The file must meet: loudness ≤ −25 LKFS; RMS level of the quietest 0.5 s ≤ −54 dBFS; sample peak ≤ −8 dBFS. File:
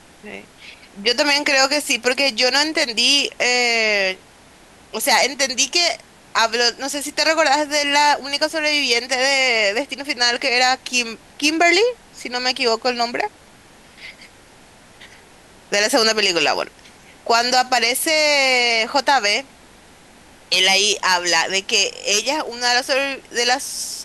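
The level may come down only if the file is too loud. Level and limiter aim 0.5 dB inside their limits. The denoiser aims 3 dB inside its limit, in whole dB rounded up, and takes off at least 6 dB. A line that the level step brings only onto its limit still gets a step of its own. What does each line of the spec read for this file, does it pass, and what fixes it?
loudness −17.0 LKFS: out of spec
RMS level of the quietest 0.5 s −47 dBFS: out of spec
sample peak −4.5 dBFS: out of spec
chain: level −8.5 dB

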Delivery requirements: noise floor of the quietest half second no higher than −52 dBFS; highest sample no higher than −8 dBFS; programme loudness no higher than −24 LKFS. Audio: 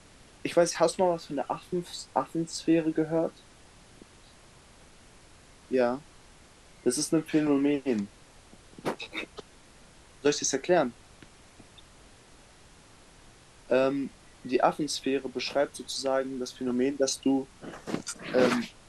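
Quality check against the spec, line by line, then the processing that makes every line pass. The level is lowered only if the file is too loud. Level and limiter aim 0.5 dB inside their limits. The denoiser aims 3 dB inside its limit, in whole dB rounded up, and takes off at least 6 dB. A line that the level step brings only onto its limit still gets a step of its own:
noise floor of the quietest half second −55 dBFS: in spec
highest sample −10.5 dBFS: in spec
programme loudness −29.0 LKFS: in spec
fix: no processing needed

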